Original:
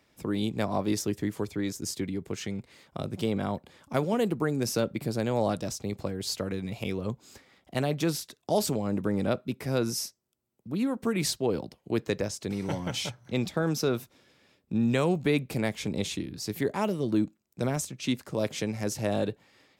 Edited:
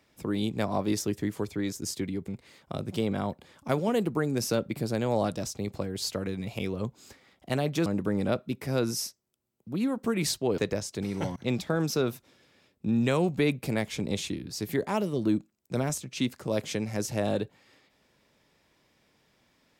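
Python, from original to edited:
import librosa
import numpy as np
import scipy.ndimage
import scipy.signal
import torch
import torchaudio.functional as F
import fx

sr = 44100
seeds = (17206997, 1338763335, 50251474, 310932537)

y = fx.edit(x, sr, fx.cut(start_s=2.28, length_s=0.25),
    fx.cut(start_s=8.11, length_s=0.74),
    fx.cut(start_s=11.57, length_s=0.49),
    fx.cut(start_s=12.84, length_s=0.39), tone=tone)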